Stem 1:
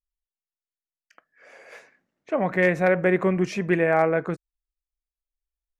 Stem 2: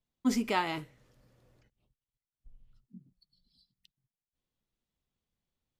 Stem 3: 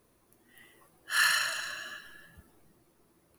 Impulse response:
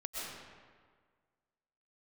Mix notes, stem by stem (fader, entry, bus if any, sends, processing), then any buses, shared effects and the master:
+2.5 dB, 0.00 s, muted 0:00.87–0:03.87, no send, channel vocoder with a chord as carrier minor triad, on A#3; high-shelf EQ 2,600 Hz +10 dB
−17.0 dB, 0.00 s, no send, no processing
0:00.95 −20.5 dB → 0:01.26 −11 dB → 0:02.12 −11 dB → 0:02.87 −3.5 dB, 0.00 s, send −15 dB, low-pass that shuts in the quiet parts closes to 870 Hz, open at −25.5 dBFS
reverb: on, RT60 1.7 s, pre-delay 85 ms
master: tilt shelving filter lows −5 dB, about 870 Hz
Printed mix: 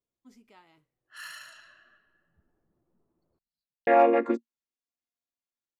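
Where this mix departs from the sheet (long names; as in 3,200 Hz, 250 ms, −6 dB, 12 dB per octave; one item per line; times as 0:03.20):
stem 2 −17.0 dB → −27.5 dB
stem 3 −20.5 dB → −27.0 dB
master: missing tilt shelving filter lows −5 dB, about 870 Hz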